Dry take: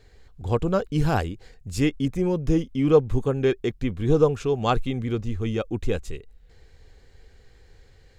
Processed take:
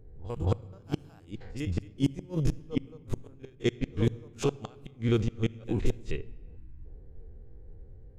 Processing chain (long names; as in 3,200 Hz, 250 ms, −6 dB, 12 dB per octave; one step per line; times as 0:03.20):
spectrum averaged block by block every 50 ms
low-pass that shuts in the quiet parts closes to 320 Hz, open at −21.5 dBFS
high-shelf EQ 4,000 Hz +10 dB
backwards echo 224 ms −19.5 dB
in parallel at +0.5 dB: downward compressor 10 to 1, threshold −35 dBFS, peak gain reduction 22 dB
on the sum: gate with flip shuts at −14 dBFS, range −35 dB
on a send at −18.5 dB: convolution reverb RT60 1.8 s, pre-delay 6 ms
on the sum: gain on a spectral selection 0:06.56–0:06.85, 360–860 Hz −21 dB